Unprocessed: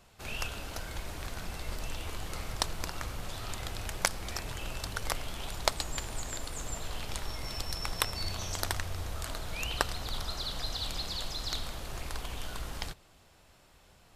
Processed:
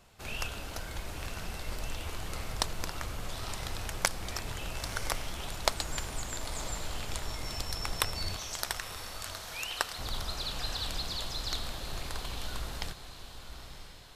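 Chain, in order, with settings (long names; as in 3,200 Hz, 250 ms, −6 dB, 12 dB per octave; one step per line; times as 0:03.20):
0:08.36–0:09.99: high-pass filter 830 Hz 6 dB per octave
feedback delay with all-pass diffusion 958 ms, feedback 46%, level −10 dB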